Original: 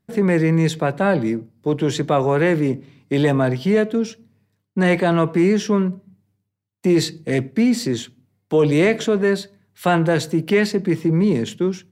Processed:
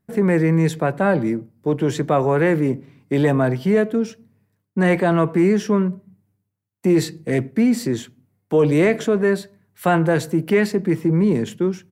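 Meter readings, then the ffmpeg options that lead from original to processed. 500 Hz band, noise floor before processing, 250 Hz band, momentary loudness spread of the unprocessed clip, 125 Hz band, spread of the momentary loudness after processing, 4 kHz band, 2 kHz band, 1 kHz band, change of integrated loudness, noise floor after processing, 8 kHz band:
0.0 dB, -73 dBFS, 0.0 dB, 8 LU, 0.0 dB, 8 LU, -6.0 dB, -1.0 dB, 0.0 dB, 0.0 dB, -73 dBFS, -2.5 dB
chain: -af "firequalizer=gain_entry='entry(1600,0);entry(3600,-7);entry(11000,2)':delay=0.05:min_phase=1"

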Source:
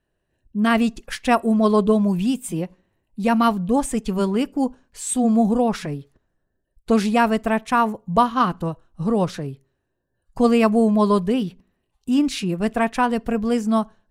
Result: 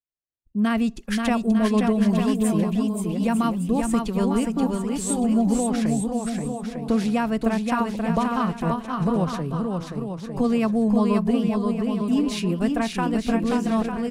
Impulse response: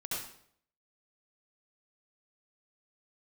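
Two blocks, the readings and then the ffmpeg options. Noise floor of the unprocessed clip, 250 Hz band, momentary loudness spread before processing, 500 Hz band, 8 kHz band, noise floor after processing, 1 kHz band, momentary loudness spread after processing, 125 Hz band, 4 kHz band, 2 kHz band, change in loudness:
-75 dBFS, -0.5 dB, 12 LU, -4.0 dB, -1.0 dB, -40 dBFS, -6.0 dB, 6 LU, +1.0 dB, -2.5 dB, -4.5 dB, -2.5 dB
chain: -filter_complex "[0:a]acrossover=split=220[s0][s1];[s1]acompressor=threshold=0.0447:ratio=2.5[s2];[s0][s2]amix=inputs=2:normalize=0,agate=range=0.0224:threshold=0.00398:ratio=3:detection=peak,aecho=1:1:530|901|1161|1342|1470:0.631|0.398|0.251|0.158|0.1"

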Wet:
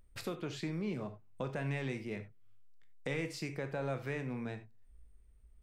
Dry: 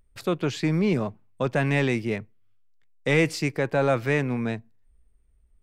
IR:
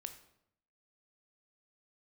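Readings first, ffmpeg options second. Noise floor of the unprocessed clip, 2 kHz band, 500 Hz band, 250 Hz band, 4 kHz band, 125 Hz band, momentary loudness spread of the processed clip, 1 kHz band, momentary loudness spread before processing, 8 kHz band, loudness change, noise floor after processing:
-62 dBFS, -15.0 dB, -15.0 dB, -14.0 dB, -12.5 dB, -13.0 dB, 8 LU, -14.5 dB, 9 LU, -12.0 dB, -14.5 dB, -61 dBFS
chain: -filter_complex "[0:a]acompressor=threshold=0.00794:ratio=2.5[s0];[1:a]atrim=start_sample=2205,atrim=end_sample=4410[s1];[s0][s1]afir=irnorm=-1:irlink=0,volume=1.5"

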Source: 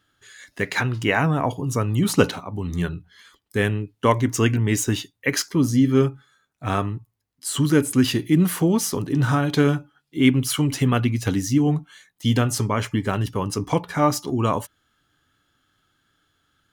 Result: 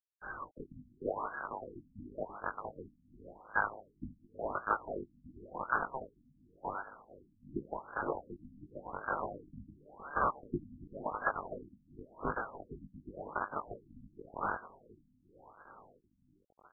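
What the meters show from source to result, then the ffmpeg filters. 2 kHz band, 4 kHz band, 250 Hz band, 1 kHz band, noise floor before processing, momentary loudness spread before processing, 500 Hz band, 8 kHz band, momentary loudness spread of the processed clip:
-12.0 dB, under -40 dB, -26.5 dB, -9.5 dB, -73 dBFS, 9 LU, -17.0 dB, under -40 dB, 21 LU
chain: -filter_complex "[0:a]deesser=0.45,lowshelf=f=220:g=-10.5,acompressor=threshold=0.02:ratio=10,asplit=2[s0][s1];[s1]adelay=462,lowpass=f=1500:p=1,volume=0.708,asplit=2[s2][s3];[s3]adelay=462,lowpass=f=1500:p=1,volume=0.54,asplit=2[s4][s5];[s5]adelay=462,lowpass=f=1500:p=1,volume=0.54,asplit=2[s6][s7];[s7]adelay=462,lowpass=f=1500:p=1,volume=0.54,asplit=2[s8][s9];[s9]adelay=462,lowpass=f=1500:p=1,volume=0.54,asplit=2[s10][s11];[s11]adelay=462,lowpass=f=1500:p=1,volume=0.54,asplit=2[s12][s13];[s13]adelay=462,lowpass=f=1500:p=1,volume=0.54[s14];[s0][s2][s4][s6][s8][s10][s12][s14]amix=inputs=8:normalize=0,acrusher=bits=6:dc=4:mix=0:aa=0.000001,asplit=2[s15][s16];[s16]adelay=20,volume=0.631[s17];[s15][s17]amix=inputs=2:normalize=0,lowpass=f=2800:t=q:w=0.5098,lowpass=f=2800:t=q:w=0.6013,lowpass=f=2800:t=q:w=0.9,lowpass=f=2800:t=q:w=2.563,afreqshift=-3300,afftfilt=real='re*lt(b*sr/1024,280*pow(1700/280,0.5+0.5*sin(2*PI*0.91*pts/sr)))':imag='im*lt(b*sr/1024,280*pow(1700/280,0.5+0.5*sin(2*PI*0.91*pts/sr)))':win_size=1024:overlap=0.75,volume=4.47"

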